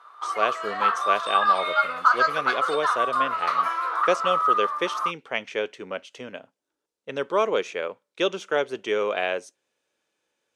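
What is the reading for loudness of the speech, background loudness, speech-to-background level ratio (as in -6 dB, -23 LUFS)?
-28.5 LUFS, -23.5 LUFS, -5.0 dB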